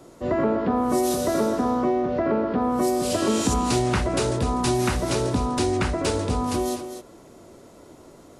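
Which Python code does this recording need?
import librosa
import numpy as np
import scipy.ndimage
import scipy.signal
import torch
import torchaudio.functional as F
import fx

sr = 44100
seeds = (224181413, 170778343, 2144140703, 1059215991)

y = fx.fix_echo_inverse(x, sr, delay_ms=248, level_db=-9.5)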